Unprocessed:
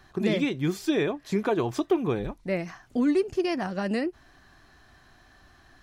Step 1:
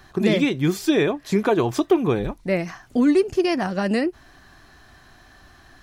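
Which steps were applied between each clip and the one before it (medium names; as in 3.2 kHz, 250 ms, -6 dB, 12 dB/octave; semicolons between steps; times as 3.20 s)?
treble shelf 8.8 kHz +4 dB; trim +6 dB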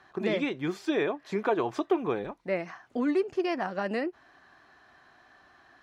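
band-pass filter 1 kHz, Q 0.53; trim -4.5 dB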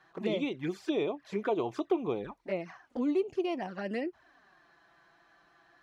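touch-sensitive flanger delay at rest 6.6 ms, full sweep at -25.5 dBFS; trim -2 dB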